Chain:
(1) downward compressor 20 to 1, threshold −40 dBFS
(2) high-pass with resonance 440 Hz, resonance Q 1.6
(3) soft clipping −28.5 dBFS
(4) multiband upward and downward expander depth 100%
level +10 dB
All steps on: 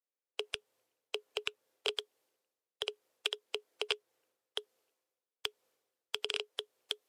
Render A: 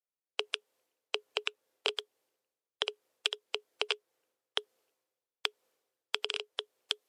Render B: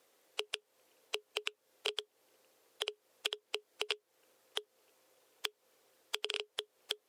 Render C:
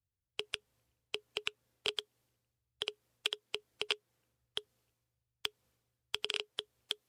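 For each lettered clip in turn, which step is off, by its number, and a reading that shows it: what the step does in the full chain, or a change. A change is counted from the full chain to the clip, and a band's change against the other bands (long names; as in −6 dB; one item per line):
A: 3, distortion level −10 dB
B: 4, 8 kHz band +2.5 dB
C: 2, 500 Hz band −3.5 dB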